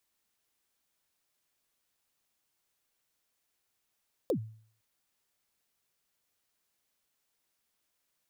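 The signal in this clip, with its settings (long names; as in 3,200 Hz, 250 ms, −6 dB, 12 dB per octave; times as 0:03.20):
synth kick length 0.51 s, from 590 Hz, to 110 Hz, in 88 ms, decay 0.52 s, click on, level −23 dB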